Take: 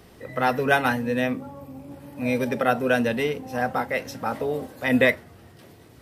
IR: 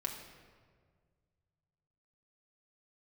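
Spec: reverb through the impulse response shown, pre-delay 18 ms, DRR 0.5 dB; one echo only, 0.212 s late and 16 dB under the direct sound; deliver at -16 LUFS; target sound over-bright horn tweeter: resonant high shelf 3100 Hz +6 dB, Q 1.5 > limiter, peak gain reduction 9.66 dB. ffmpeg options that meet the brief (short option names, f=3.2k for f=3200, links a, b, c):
-filter_complex "[0:a]aecho=1:1:212:0.158,asplit=2[a][b];[1:a]atrim=start_sample=2205,adelay=18[c];[b][c]afir=irnorm=-1:irlink=0,volume=-1.5dB[d];[a][d]amix=inputs=2:normalize=0,highshelf=f=3.1k:t=q:w=1.5:g=6,volume=8.5dB,alimiter=limit=-4.5dB:level=0:latency=1"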